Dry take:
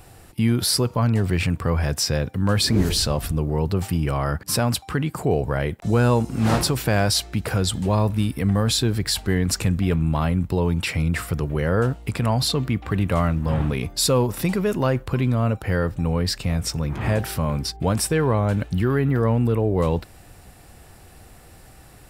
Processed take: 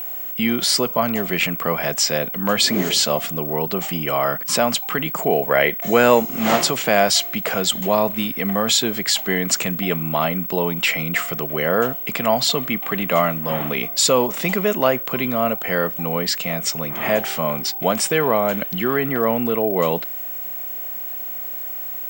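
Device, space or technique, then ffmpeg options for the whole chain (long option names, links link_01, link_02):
old television with a line whistle: -filter_complex "[0:a]highpass=frequency=190:width=0.5412,highpass=frequency=190:width=1.3066,equalizer=frequency=300:width_type=q:width=4:gain=-4,equalizer=frequency=660:width_type=q:width=4:gain=8,equalizer=frequency=1200:width_type=q:width=4:gain=4,equalizer=frequency=2100:width_type=q:width=4:gain=8,equalizer=frequency=3100:width_type=q:width=4:gain=8,equalizer=frequency=6900:width_type=q:width=4:gain=8,lowpass=frequency=8800:width=0.5412,lowpass=frequency=8800:width=1.3066,aeval=exprs='val(0)+0.0398*sin(2*PI*15734*n/s)':channel_layout=same,asettb=1/sr,asplit=3[link_01][link_02][link_03];[link_01]atrim=end=5.444[link_04];[link_02]atrim=start=5.44:end=6.2,asetpts=PTS-STARTPTS,afade=type=in:duration=0.004:curve=qsin,afade=type=out:start_time=0.756:duration=0.004:curve=qsin,equalizer=frequency=500:width_type=o:width=1:gain=4,equalizer=frequency=2000:width_type=o:width=1:gain=7,equalizer=frequency=8000:width_type=o:width=1:gain=3[link_05];[link_03]atrim=start=6.196[link_06];[link_04][link_05]acrossfade=duration=0.004:curve1=hsin:curve2=qsin[link_07];[link_07][link_06]acrossfade=duration=0.004:curve1=qsin:curve2=hsin,volume=2dB"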